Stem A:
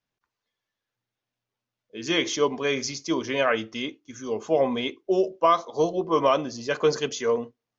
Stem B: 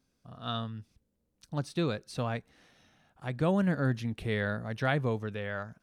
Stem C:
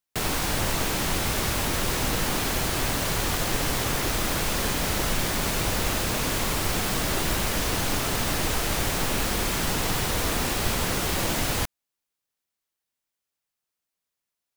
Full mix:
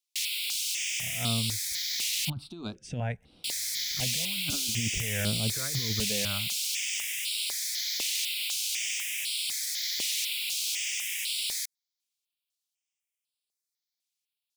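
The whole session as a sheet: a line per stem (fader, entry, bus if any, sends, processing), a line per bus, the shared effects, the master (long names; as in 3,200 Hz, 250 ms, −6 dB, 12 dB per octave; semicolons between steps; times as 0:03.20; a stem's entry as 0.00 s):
muted
−7.0 dB, 0.75 s, no send, low-shelf EQ 470 Hz +11.5 dB; compressor whose output falls as the input rises −24 dBFS, ratio −0.5
−5.0 dB, 0.00 s, muted 0:02.30–0:03.44, no send, Butterworth high-pass 2,100 Hz 48 dB per octave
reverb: not used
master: parametric band 4,300 Hz +9 dB 2.8 octaves; step-sequenced phaser 4 Hz 330–6,300 Hz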